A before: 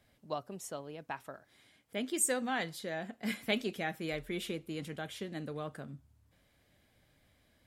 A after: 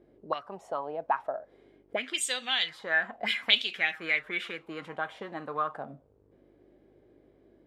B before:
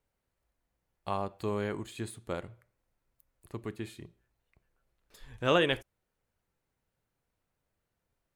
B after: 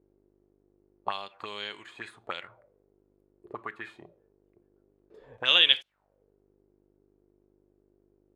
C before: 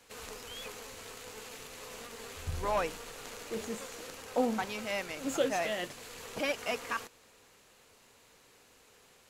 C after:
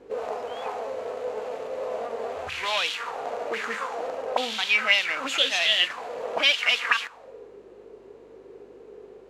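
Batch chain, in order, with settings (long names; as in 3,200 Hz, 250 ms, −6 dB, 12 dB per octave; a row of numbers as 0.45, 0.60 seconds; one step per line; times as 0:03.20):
hum with harmonics 50 Hz, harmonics 33, −65 dBFS −9 dB per octave
envelope filter 350–3,400 Hz, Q 4.2, up, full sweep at −30.5 dBFS
harmonic and percussive parts rebalanced harmonic +5 dB
normalise the peak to −6 dBFS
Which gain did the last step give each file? +17.5, +15.0, +22.0 decibels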